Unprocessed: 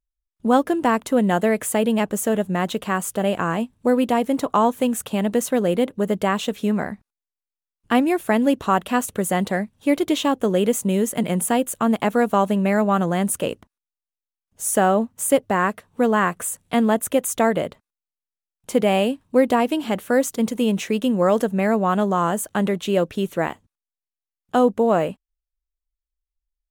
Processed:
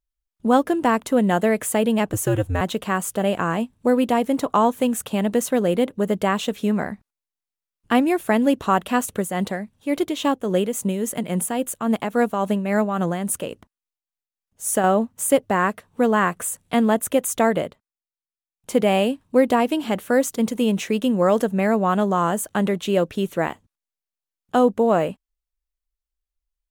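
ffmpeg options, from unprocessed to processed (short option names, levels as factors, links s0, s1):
-filter_complex "[0:a]asettb=1/sr,asplit=3[s0][s1][s2];[s0]atrim=end=2.134[s3];[s1]atrim=start=2.13:end=2.61,asetpts=PTS-STARTPTS,afade=t=in:d=0.004:c=qsin,afade=t=out:st=0.476:d=0.004:c=qsin,afreqshift=-93[s4];[s2]atrim=start=2.606[s5];[s3][s4]acrossfade=d=0.004:c1=hsin:c2=qsin[s6];[s6][s5]acrossfade=d=0.004:c1=qsin:c2=hsin,asettb=1/sr,asplit=3[s7][s8][s9];[s7]atrim=end=9.174[s10];[s8]atrim=start=9.17:end=14.84,asetpts=PTS-STARTPTS,afade=t=in:d=0.004:c=qsin,afade=t=out:st=5.666:d=0.004:c=qsin,tremolo=f=3.6:d=0.53[s11];[s9]atrim=start=14.836[s12];[s10][s11]acrossfade=d=0.004:c1=hsin:c2=qsin[s13];[s13][s12]acrossfade=d=0.004:c1=qsin:c2=hsin,asplit=3[s14][s15][s16];[s14]atrim=end=17.77,asetpts=PTS-STARTPTS,afade=t=out:st=17.59:d=0.18:silence=0.354813[s17];[s15]atrim=start=17.77:end=18.53,asetpts=PTS-STARTPTS,volume=0.355[s18];[s16]atrim=start=18.53,asetpts=PTS-STARTPTS,afade=t=in:d=0.18:silence=0.354813[s19];[s17][s18][s19]concat=n=3:v=0:a=1"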